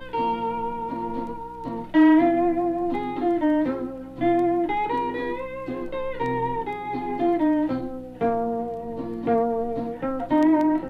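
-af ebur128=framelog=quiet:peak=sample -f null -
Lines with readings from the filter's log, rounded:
Integrated loudness:
  I:         -24.3 LUFS
  Threshold: -34.3 LUFS
Loudness range:
  LRA:         4.2 LU
  Threshold: -44.5 LUFS
  LRA low:   -26.2 LUFS
  LRA high:  -22.0 LUFS
Sample peak:
  Peak:       -7.6 dBFS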